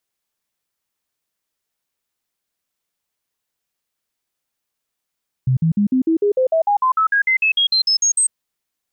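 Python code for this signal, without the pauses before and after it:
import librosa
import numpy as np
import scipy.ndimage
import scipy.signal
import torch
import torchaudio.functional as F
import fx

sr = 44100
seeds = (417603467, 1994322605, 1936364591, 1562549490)

y = fx.stepped_sweep(sr, from_hz=129.0, direction='up', per_octave=3, tones=19, dwell_s=0.1, gap_s=0.05, level_db=-12.5)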